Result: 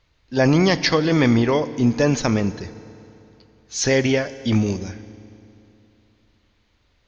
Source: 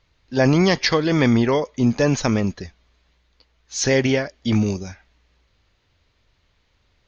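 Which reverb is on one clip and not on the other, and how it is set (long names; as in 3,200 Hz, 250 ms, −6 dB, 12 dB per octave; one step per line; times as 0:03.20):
feedback delay network reverb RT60 3 s, high-frequency decay 0.75×, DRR 14 dB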